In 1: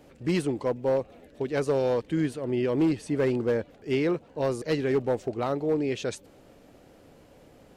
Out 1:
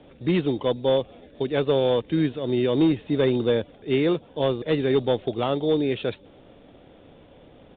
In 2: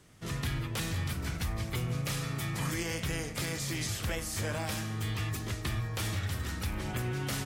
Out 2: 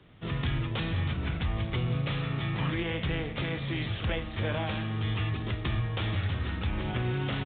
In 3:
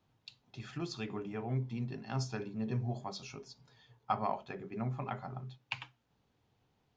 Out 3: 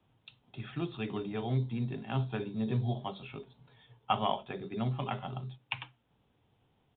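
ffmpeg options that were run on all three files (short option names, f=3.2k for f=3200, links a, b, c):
-filter_complex "[0:a]acrossover=split=120|1600[a][b][c];[b]acrusher=samples=11:mix=1:aa=0.000001[d];[a][d][c]amix=inputs=3:normalize=0,aresample=8000,aresample=44100,volume=4dB"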